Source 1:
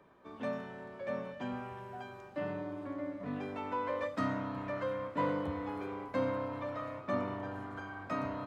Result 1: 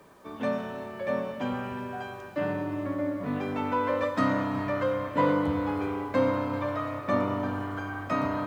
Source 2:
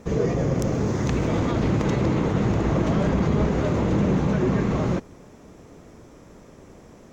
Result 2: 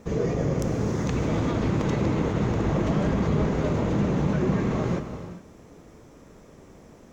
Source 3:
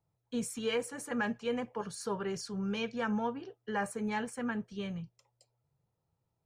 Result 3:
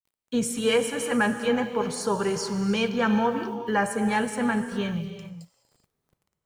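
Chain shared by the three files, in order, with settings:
word length cut 12-bit, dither none; gated-style reverb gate 440 ms flat, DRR 7.5 dB; peak normalisation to -12 dBFS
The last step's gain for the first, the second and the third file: +8.0 dB, -3.0 dB, +9.5 dB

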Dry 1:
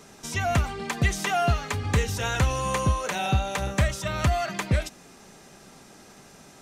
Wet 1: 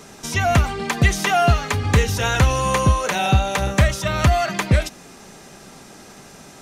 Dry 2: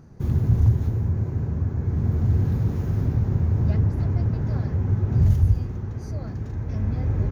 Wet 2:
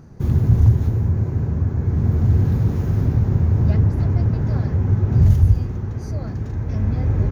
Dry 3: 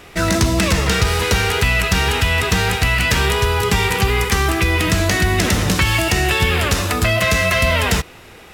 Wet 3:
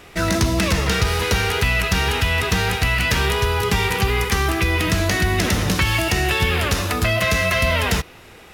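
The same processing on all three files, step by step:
dynamic bell 7.8 kHz, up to -5 dB, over -47 dBFS, Q 4.7; normalise loudness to -19 LUFS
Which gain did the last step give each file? +7.0 dB, +4.5 dB, -2.5 dB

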